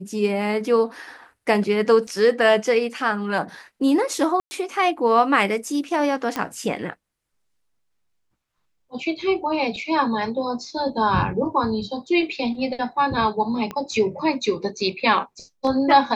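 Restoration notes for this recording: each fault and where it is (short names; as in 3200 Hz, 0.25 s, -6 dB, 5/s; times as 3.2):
2.07 gap 2.6 ms
4.4–4.51 gap 0.11 s
6.36 pop -11 dBFS
13.71 pop -16 dBFS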